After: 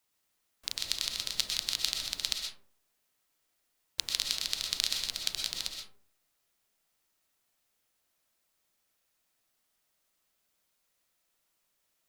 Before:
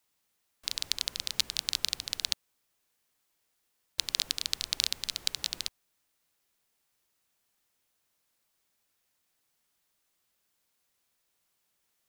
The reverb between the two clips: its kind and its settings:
comb and all-pass reverb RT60 0.51 s, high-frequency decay 0.4×, pre-delay 85 ms, DRR 2 dB
level −2 dB

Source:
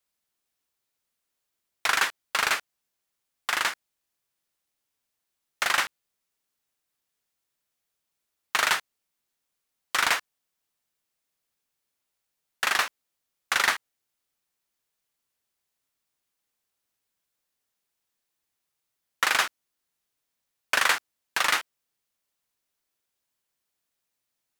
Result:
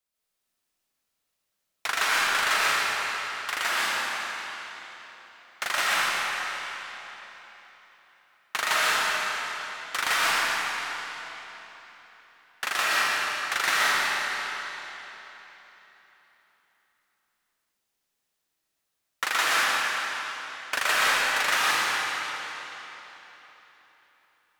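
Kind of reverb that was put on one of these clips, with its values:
comb and all-pass reverb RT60 3.8 s, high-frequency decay 0.9×, pre-delay 85 ms, DRR −8 dB
level −5 dB

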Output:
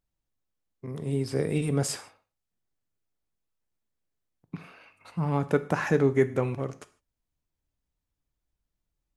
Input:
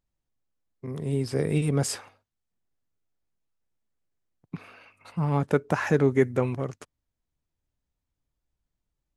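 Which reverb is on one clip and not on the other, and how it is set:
reverb whose tail is shaped and stops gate 180 ms falling, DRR 12 dB
level −1.5 dB

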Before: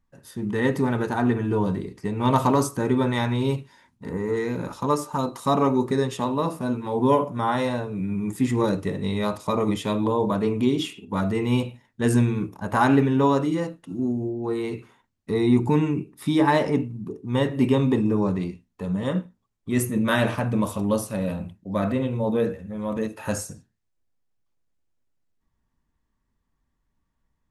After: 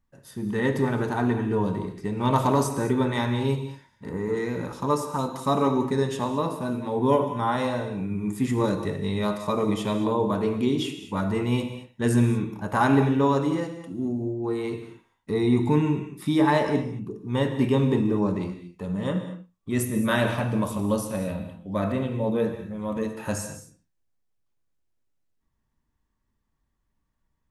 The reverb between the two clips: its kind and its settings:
reverb whose tail is shaped and stops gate 250 ms flat, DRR 7.5 dB
level −2 dB

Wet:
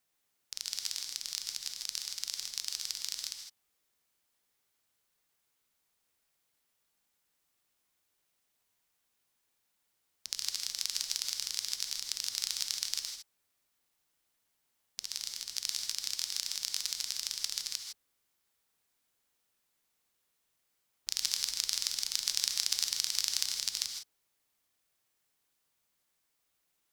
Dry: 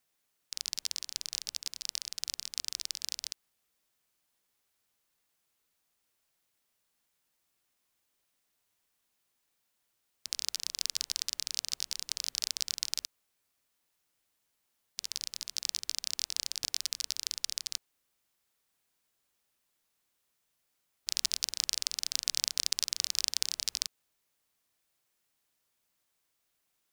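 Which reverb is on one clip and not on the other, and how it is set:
reverb whose tail is shaped and stops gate 180 ms rising, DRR 4 dB
level −1.5 dB

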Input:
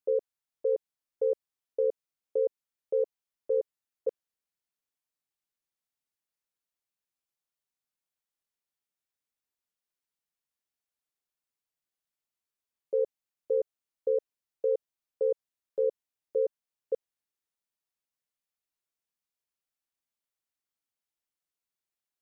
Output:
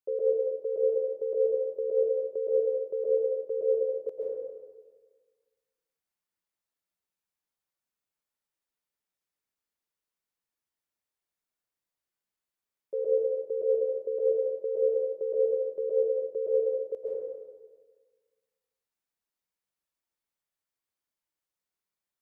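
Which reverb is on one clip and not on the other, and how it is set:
dense smooth reverb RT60 1.5 s, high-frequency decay 0.35×, pre-delay 110 ms, DRR −5 dB
level −4.5 dB

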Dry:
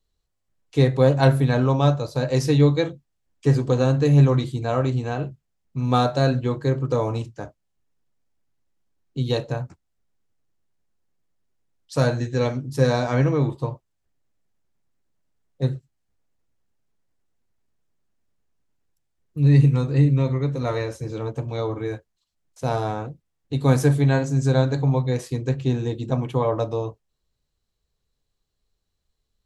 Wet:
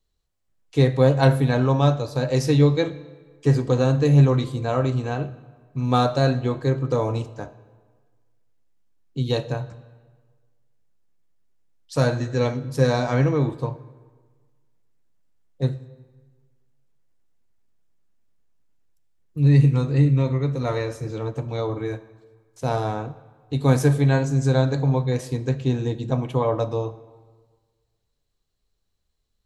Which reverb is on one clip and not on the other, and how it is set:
comb and all-pass reverb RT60 1.5 s, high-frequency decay 0.75×, pre-delay 0 ms, DRR 15 dB

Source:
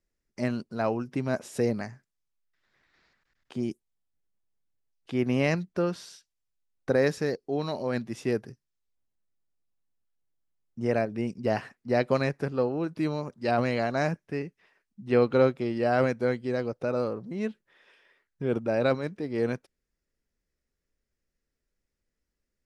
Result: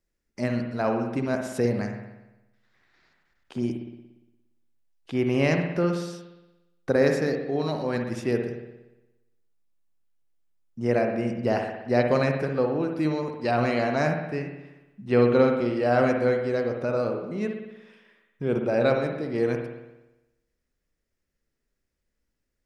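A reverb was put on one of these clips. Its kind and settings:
spring reverb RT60 1 s, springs 58 ms, chirp 80 ms, DRR 3.5 dB
level +1.5 dB

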